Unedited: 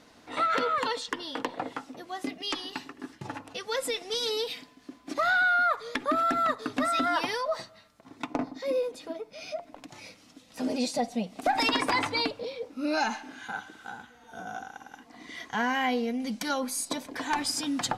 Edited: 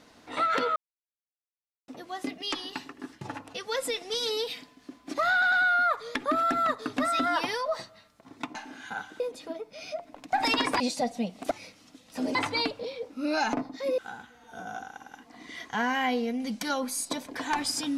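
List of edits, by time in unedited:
0.76–1.88 s: mute
5.32 s: stutter 0.10 s, 3 plays
8.35–8.80 s: swap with 13.13–13.78 s
9.93–10.77 s: swap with 11.48–11.95 s

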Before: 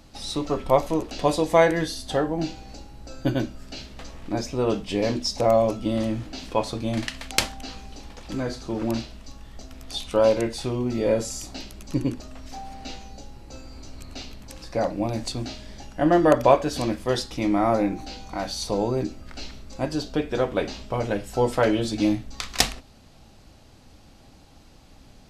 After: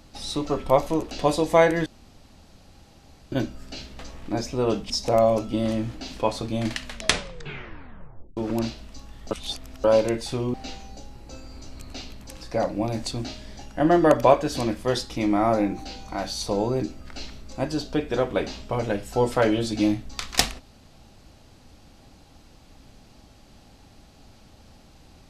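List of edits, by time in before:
1.86–3.32 s: room tone
4.90–5.22 s: delete
7.10 s: tape stop 1.59 s
9.63–10.16 s: reverse
10.86–12.75 s: delete

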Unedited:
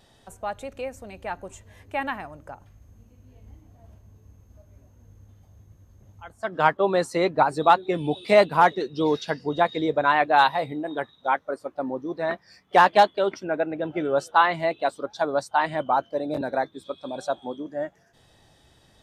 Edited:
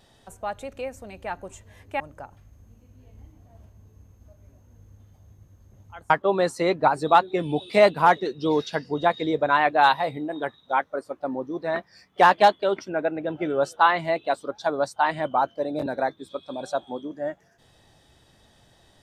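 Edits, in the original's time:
2.00–2.29 s: delete
6.39–6.65 s: delete

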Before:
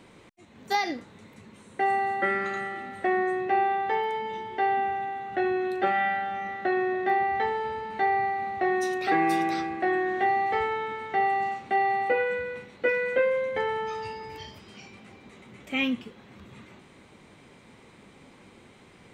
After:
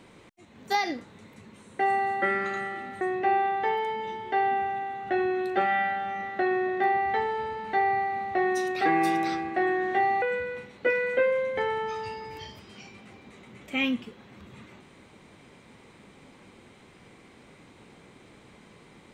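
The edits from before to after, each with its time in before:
3.01–3.27 s: delete
10.48–12.21 s: delete

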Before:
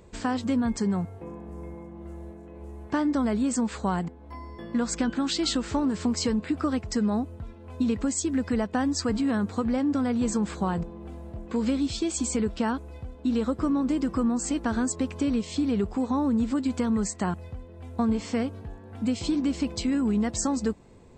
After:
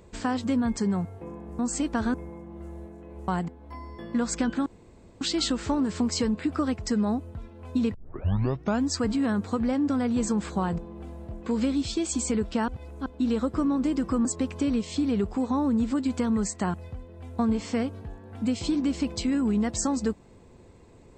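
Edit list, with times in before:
2.73–3.88 s: delete
5.26 s: insert room tone 0.55 s
7.99 s: tape start 0.93 s
12.73–13.11 s: reverse
14.30–14.85 s: move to 1.59 s

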